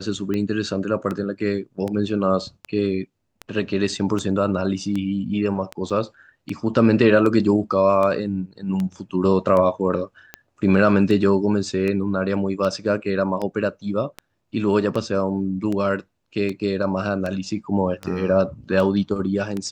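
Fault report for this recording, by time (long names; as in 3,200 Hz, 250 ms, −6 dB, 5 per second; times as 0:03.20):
scratch tick 78 rpm −15 dBFS
0:05.90: drop-out 4.4 ms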